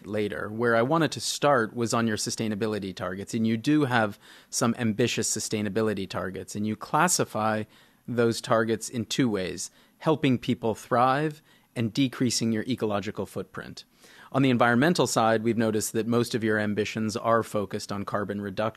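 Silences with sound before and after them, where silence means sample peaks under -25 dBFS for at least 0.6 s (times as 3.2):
13.61–14.35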